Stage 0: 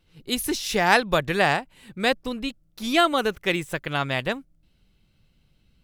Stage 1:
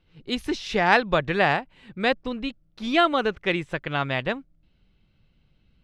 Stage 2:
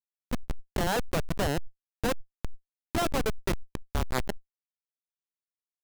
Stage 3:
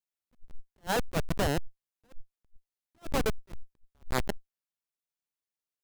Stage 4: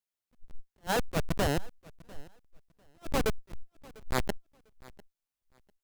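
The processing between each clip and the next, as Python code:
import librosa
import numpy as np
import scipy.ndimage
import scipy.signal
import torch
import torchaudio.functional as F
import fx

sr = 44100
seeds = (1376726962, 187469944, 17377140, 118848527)

y1 = scipy.signal.sosfilt(scipy.signal.butter(2, 3600.0, 'lowpass', fs=sr, output='sos'), x)
y2 = fx.schmitt(y1, sr, flips_db=-18.0)
y2 = fx.sustainer(y2, sr, db_per_s=27.0)
y3 = fx.attack_slew(y2, sr, db_per_s=440.0)
y4 = fx.echo_feedback(y3, sr, ms=698, feedback_pct=20, wet_db=-23.0)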